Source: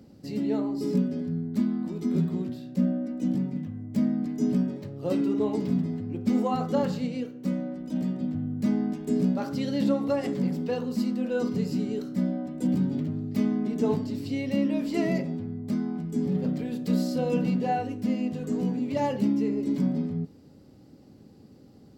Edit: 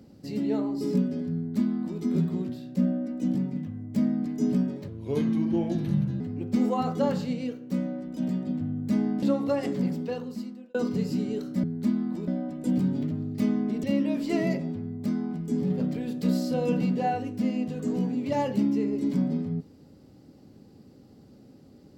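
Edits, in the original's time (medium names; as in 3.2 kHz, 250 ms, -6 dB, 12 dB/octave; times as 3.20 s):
1.36–2.00 s: copy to 12.24 s
4.88–5.94 s: speed 80%
8.96–9.83 s: delete
10.46–11.35 s: fade out
13.80–14.48 s: delete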